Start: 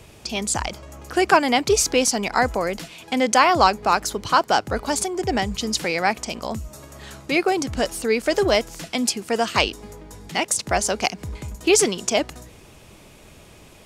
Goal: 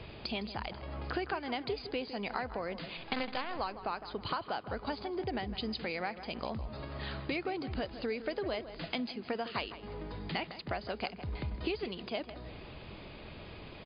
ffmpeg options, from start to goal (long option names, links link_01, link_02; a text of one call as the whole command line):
ffmpeg -i in.wav -filter_complex "[0:a]acompressor=threshold=-33dB:ratio=8,asettb=1/sr,asplit=3[link_01][link_02][link_03];[link_01]atrim=end=2.974[link_04];[link_02]atrim=start=2.97:end=3.59,asetpts=PTS-STARTPTS,afade=type=in:duration=0.004:curve=qsin,afade=type=out:start_time=0.616:duration=0.004:curve=qsin,acrusher=bits=6:dc=4:mix=0:aa=0.000001[link_05];[link_03]atrim=start=3.586[link_06];[link_04][link_05]acrossfade=duration=0.004:curve1=hsin:curve2=qsin[link_07];[link_07][link_06]acrossfade=duration=0.004:curve1=qsin:curve2=hsin,asplit=2[link_08][link_09];[link_09]adelay=159,lowpass=frequency=2600:poles=1,volume=-12dB,asplit=2[link_10][link_11];[link_11]adelay=159,lowpass=frequency=2600:poles=1,volume=0.43,asplit=2[link_12][link_13];[link_13]adelay=159,lowpass=frequency=2600:poles=1,volume=0.43,asplit=2[link_14][link_15];[link_15]adelay=159,lowpass=frequency=2600:poles=1,volume=0.43[link_16];[link_10][link_12][link_14][link_16]amix=inputs=4:normalize=0[link_17];[link_08][link_17]amix=inputs=2:normalize=0" -ar 11025 -c:a libmp3lame -b:a 48k out.mp3